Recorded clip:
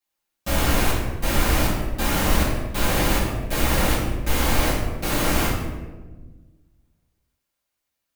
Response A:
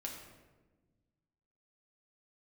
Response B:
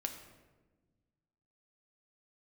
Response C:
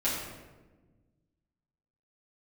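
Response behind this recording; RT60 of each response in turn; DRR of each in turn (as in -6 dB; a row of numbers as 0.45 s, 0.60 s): C; 1.3 s, 1.3 s, 1.3 s; -2.0 dB, 3.5 dB, -11.5 dB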